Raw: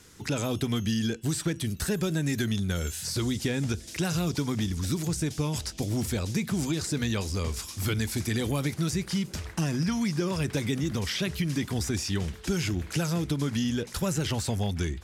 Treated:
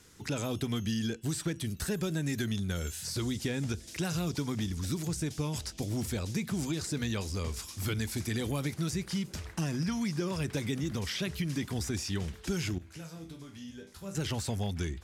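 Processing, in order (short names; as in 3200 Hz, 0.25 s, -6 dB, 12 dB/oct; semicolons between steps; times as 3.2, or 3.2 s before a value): 12.78–14.15 resonator bank C2 major, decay 0.38 s; gain -4.5 dB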